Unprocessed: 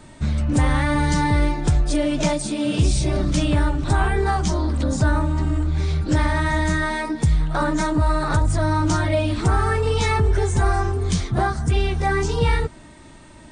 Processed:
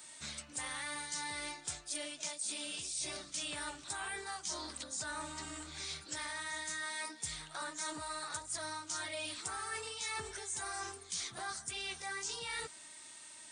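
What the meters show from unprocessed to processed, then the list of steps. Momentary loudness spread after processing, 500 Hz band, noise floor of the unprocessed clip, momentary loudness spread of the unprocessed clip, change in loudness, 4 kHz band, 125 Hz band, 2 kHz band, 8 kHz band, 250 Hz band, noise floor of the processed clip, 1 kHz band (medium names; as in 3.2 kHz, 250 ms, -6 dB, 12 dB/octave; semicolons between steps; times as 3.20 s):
4 LU, -24.5 dB, -44 dBFS, 3 LU, -19.0 dB, -8.5 dB, -38.0 dB, -14.5 dB, -5.0 dB, -29.5 dB, -54 dBFS, -20.0 dB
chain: differentiator; reverse; compression 6:1, threshold -42 dBFS, peak gain reduction 14.5 dB; reverse; trim +4 dB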